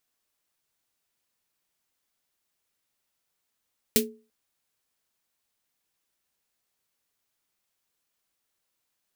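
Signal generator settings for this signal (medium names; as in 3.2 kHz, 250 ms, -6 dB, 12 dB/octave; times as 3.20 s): snare drum length 0.34 s, tones 230 Hz, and 430 Hz, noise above 2 kHz, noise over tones 4 dB, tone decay 0.35 s, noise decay 0.13 s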